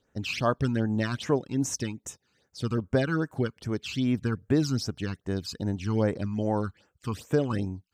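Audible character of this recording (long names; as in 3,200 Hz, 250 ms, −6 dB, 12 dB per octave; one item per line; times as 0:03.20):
phaser sweep stages 12, 2.5 Hz, lowest notch 570–4,600 Hz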